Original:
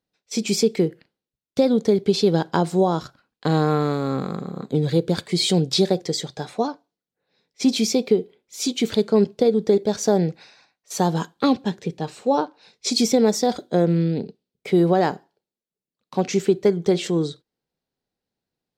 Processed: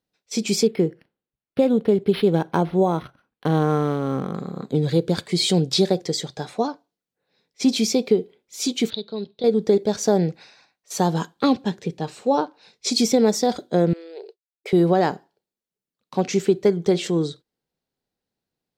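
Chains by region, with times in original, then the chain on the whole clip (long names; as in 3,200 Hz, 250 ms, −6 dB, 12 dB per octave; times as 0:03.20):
0:00.67–0:04.35: high-frequency loss of the air 65 metres + linearly interpolated sample-rate reduction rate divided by 6×
0:08.90–0:09.44: transistor ladder low-pass 4,000 Hz, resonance 85% + dynamic equaliser 2,000 Hz, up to −5 dB, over −49 dBFS, Q 1.7
0:13.93–0:14.73: downward expander −43 dBFS + downward compressor 2.5 to 1, threshold −28 dBFS + linear-phase brick-wall high-pass 340 Hz
whole clip: no processing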